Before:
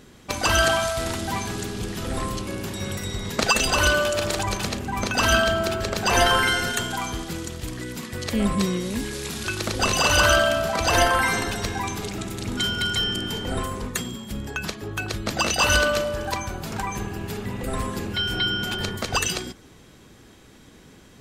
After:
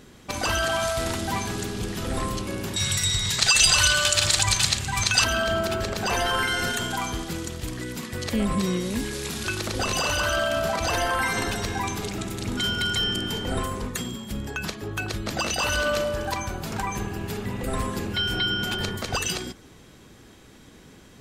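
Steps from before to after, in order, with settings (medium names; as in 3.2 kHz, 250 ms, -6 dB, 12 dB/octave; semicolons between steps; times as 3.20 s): peak limiter -15.5 dBFS, peak gain reduction 9.5 dB; 2.76–5.24 s: graphic EQ 125/250/500/2000/4000/8000 Hz +7/-11/-7/+4/+9/+12 dB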